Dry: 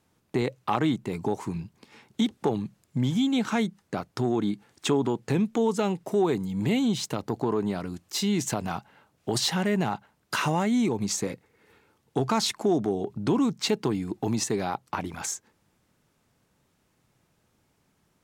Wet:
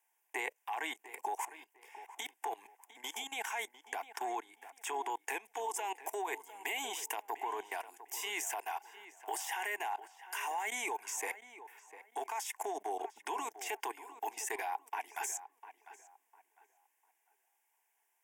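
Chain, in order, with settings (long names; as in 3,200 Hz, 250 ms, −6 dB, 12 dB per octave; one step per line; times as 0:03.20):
high-pass filter 660 Hz 24 dB per octave
high-shelf EQ 9,600 Hz +10.5 dB
brickwall limiter −23 dBFS, peak gain reduction 11 dB
output level in coarse steps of 21 dB
phaser with its sweep stopped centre 850 Hz, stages 8
on a send: tape delay 701 ms, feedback 29%, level −13 dB, low-pass 2,300 Hz
on the sum: level +7 dB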